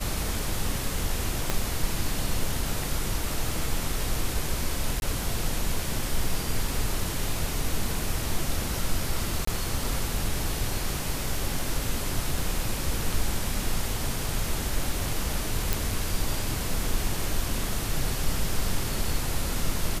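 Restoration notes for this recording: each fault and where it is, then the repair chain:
1.50 s: pop -9 dBFS
5.00–5.02 s: dropout 21 ms
9.45–9.47 s: dropout 24 ms
15.73 s: pop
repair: de-click; interpolate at 5.00 s, 21 ms; interpolate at 9.45 s, 24 ms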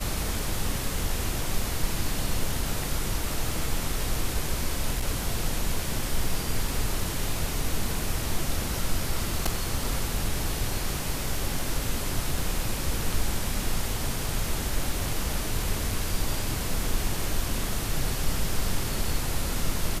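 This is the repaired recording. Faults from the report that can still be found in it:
1.50 s: pop

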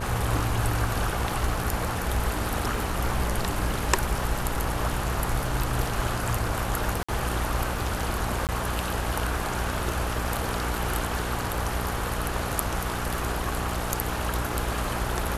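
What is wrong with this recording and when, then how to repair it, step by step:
buzz 60 Hz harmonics 16 -32 dBFS
crackle 21 per s -33 dBFS
7.03–7.08 s: dropout 55 ms
8.47–8.49 s: dropout 18 ms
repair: de-click; de-hum 60 Hz, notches 16; interpolate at 7.03 s, 55 ms; interpolate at 8.47 s, 18 ms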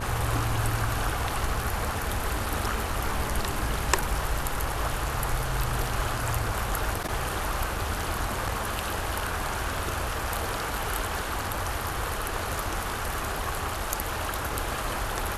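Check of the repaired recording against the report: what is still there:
nothing left

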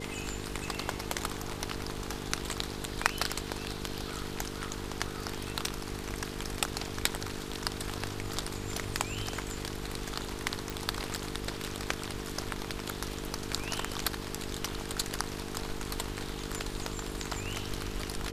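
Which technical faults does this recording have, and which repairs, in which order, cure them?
buzz 50 Hz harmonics 9 -41 dBFS
10.70 s: pop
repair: de-click; de-hum 50 Hz, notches 9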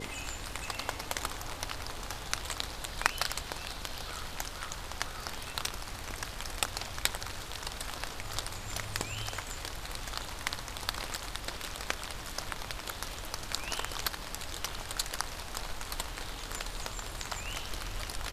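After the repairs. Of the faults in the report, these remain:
nothing left

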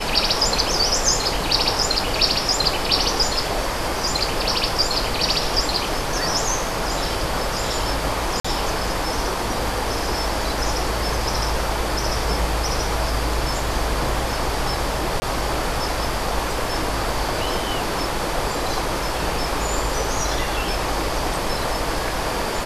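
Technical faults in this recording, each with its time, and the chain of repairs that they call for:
8.40–8.45 s: dropout 45 ms
15.20–15.22 s: dropout 20 ms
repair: interpolate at 8.40 s, 45 ms; interpolate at 15.20 s, 20 ms

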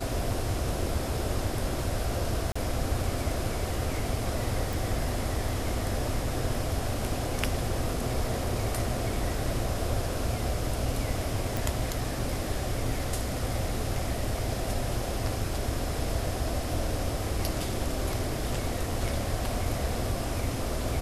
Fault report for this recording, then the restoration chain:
2.52–2.56 s: dropout 35 ms
4.73 s: pop
11.57 s: pop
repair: de-click; interpolate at 2.52 s, 35 ms

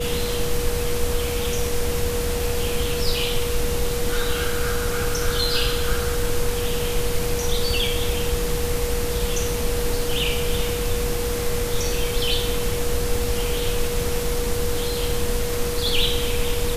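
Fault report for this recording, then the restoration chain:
whine 480 Hz -26 dBFS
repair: band-stop 480 Hz, Q 30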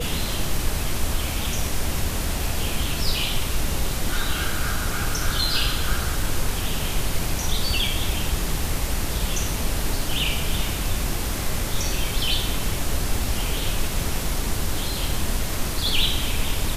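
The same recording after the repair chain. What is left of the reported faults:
nothing left

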